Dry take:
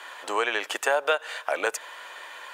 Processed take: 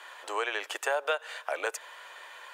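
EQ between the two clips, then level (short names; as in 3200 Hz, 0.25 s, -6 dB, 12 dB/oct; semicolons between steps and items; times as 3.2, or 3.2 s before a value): HPF 340 Hz 24 dB/oct; -5.5 dB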